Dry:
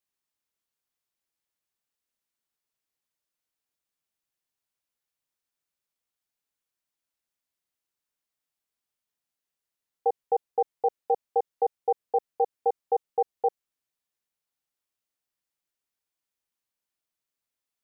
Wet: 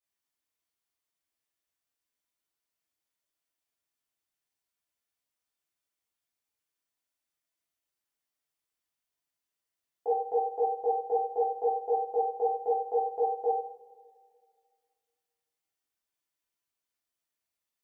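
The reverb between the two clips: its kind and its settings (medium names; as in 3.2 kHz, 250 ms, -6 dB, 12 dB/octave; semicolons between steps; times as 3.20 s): two-slope reverb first 0.53 s, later 2.1 s, from -20 dB, DRR -8 dB; trim -9 dB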